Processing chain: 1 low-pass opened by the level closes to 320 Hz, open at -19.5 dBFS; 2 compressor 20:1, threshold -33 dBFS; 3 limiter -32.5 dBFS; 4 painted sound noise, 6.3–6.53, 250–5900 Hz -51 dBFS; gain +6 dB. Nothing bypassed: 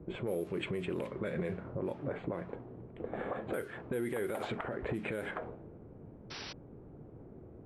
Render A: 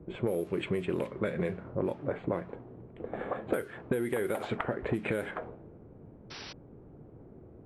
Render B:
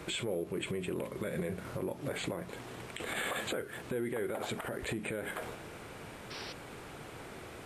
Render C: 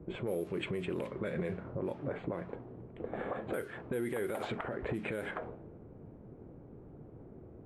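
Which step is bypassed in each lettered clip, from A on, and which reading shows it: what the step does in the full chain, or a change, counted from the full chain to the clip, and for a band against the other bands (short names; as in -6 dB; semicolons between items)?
3, crest factor change +6.0 dB; 1, 8 kHz band +11.0 dB; 4, 4 kHz band -2.0 dB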